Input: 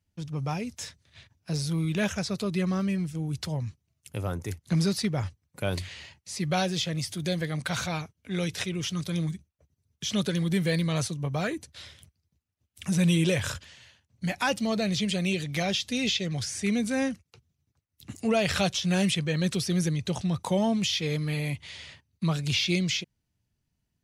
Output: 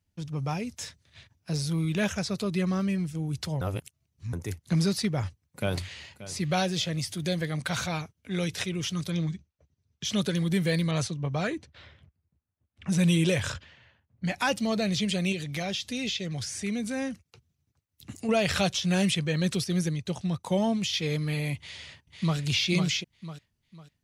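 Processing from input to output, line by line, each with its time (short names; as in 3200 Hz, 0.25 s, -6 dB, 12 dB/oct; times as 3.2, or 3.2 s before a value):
3.61–4.33 reverse
5.02–6.17 echo throw 0.58 s, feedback 25%, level -15 dB
9.11–10.05 LPF 6400 Hz 24 dB/oct
10.91–14.34 low-pass opened by the level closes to 1600 Hz, open at -21.5 dBFS
15.32–18.29 compressor 1.5:1, threshold -34 dBFS
19.64–20.94 upward expander, over -46 dBFS
21.57–22.38 echo throw 0.5 s, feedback 35%, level -4.5 dB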